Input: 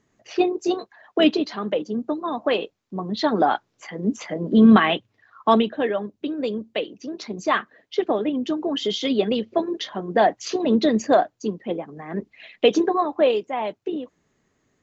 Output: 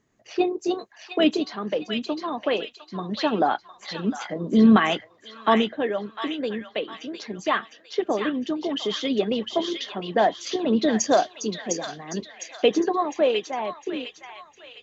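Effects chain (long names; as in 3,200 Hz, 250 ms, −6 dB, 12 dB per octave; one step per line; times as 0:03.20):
0:11.00–0:11.64: parametric band 5,800 Hz +15 dB 1.1 octaves
on a send: delay with a high-pass on its return 706 ms, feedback 39%, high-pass 1,600 Hz, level −3 dB
on the sum: level −2.5 dB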